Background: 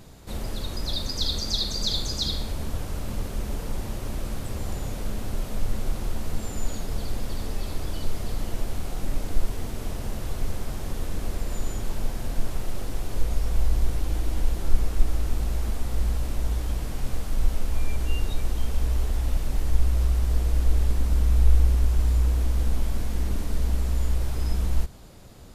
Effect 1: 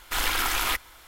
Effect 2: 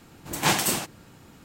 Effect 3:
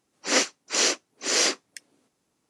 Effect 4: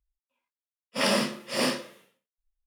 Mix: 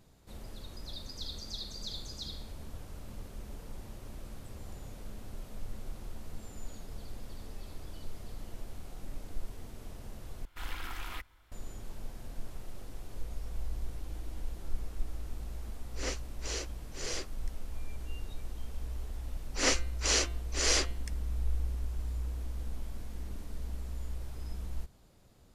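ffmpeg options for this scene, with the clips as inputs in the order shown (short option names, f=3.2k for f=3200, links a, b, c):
-filter_complex "[3:a]asplit=2[a][b];[0:a]volume=-14.5dB[c];[1:a]bass=f=250:g=11,treble=f=4k:g=-7[d];[a]equalizer=f=420:t=o:w=0.77:g=5.5[e];[b]bandreject=f=172.6:t=h:w=4,bandreject=f=345.2:t=h:w=4,bandreject=f=517.8:t=h:w=4,bandreject=f=690.4:t=h:w=4,bandreject=f=863:t=h:w=4,bandreject=f=1.0356k:t=h:w=4,bandreject=f=1.2082k:t=h:w=4,bandreject=f=1.3808k:t=h:w=4,bandreject=f=1.5534k:t=h:w=4,bandreject=f=1.726k:t=h:w=4,bandreject=f=1.8986k:t=h:w=4,bandreject=f=2.0712k:t=h:w=4,bandreject=f=2.2438k:t=h:w=4,bandreject=f=2.4164k:t=h:w=4,bandreject=f=2.589k:t=h:w=4,bandreject=f=2.7616k:t=h:w=4,bandreject=f=2.9342k:t=h:w=4,bandreject=f=3.1068k:t=h:w=4,bandreject=f=3.2794k:t=h:w=4,bandreject=f=3.452k:t=h:w=4,bandreject=f=3.6246k:t=h:w=4,bandreject=f=3.7972k:t=h:w=4,bandreject=f=3.9698k:t=h:w=4,bandreject=f=4.1424k:t=h:w=4,bandreject=f=4.315k:t=h:w=4[f];[c]asplit=2[g][h];[g]atrim=end=10.454[i];[d]atrim=end=1.07,asetpts=PTS-STARTPTS,volume=-16.5dB[j];[h]atrim=start=11.516[k];[e]atrim=end=2.49,asetpts=PTS-STARTPTS,volume=-17dB,afade=t=in:d=0.004:c=hsin,afade=t=out:st=2.486:d=0.004:c=hsin,adelay=15710[l];[f]atrim=end=2.49,asetpts=PTS-STARTPTS,volume=-6dB,afade=t=in:d=0.004:c=hsin,afade=t=out:st=2.486:d=0.004:c=hsin,adelay=19310[m];[i][j]acrossfade=d=0.004:c1=hsin:c2=hsin[n];[n][k]acrossfade=d=0.004:c1=hsin:c2=hsin[o];[o][l][m]amix=inputs=3:normalize=0"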